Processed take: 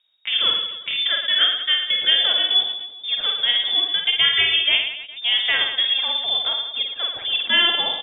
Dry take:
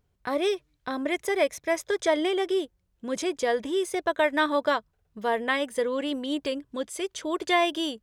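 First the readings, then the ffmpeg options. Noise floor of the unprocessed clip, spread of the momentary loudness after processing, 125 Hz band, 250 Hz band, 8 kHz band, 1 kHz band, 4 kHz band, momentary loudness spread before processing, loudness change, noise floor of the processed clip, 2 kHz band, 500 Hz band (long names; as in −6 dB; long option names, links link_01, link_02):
−72 dBFS, 8 LU, can't be measured, below −15 dB, below −40 dB, −4.0 dB, +21.0 dB, 9 LU, +9.5 dB, −39 dBFS, +7.5 dB, −13.0 dB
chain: -af "lowpass=frequency=3200:width_type=q:width=0.5098,lowpass=frequency=3200:width_type=q:width=0.6013,lowpass=frequency=3200:width_type=q:width=0.9,lowpass=frequency=3200:width_type=q:width=2.563,afreqshift=-3800,aecho=1:1:50|112.5|190.6|288.3|410.4:0.631|0.398|0.251|0.158|0.1,volume=4.5dB"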